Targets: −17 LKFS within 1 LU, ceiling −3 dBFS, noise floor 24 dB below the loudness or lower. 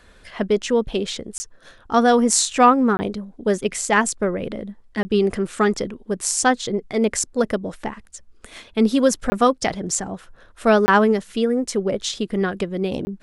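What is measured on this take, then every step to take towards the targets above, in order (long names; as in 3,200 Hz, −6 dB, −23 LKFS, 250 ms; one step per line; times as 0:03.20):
number of dropouts 6; longest dropout 20 ms; integrated loudness −20.5 LKFS; sample peak −2.0 dBFS; target loudness −17.0 LKFS
→ repair the gap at 0:01.38/0:02.97/0:05.03/0:09.30/0:10.86/0:13.05, 20 ms
level +3.5 dB
brickwall limiter −3 dBFS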